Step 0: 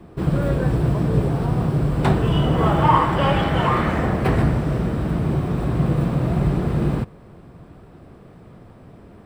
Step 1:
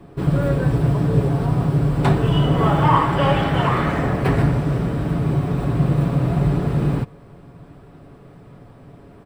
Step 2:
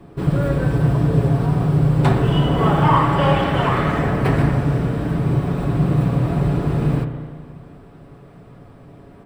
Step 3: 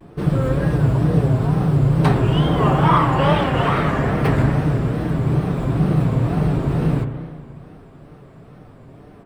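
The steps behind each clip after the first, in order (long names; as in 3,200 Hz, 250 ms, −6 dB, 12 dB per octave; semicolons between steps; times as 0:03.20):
comb filter 7.1 ms, depth 39%
spring reverb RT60 1.9 s, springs 33/57 ms, chirp 70 ms, DRR 6.5 dB
tape wow and flutter 130 cents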